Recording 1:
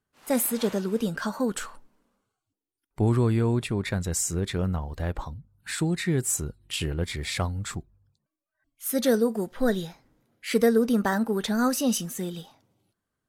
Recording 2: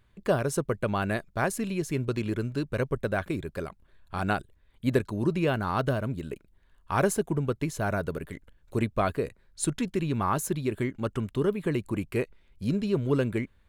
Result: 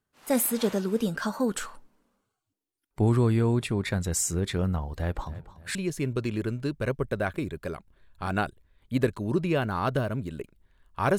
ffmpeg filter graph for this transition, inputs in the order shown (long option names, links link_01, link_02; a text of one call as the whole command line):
ffmpeg -i cue0.wav -i cue1.wav -filter_complex "[0:a]asplit=3[link_01][link_02][link_03];[link_01]afade=type=out:start_time=5.25:duration=0.02[link_04];[link_02]aecho=1:1:290|580|870:0.158|0.0555|0.0194,afade=type=in:start_time=5.25:duration=0.02,afade=type=out:start_time=5.75:duration=0.02[link_05];[link_03]afade=type=in:start_time=5.75:duration=0.02[link_06];[link_04][link_05][link_06]amix=inputs=3:normalize=0,apad=whole_dur=11.18,atrim=end=11.18,atrim=end=5.752[link_07];[1:a]atrim=start=1.668:end=7.1[link_08];[link_07][link_08]acrossfade=duration=0.004:curve1=hsin:curve2=hsin" out.wav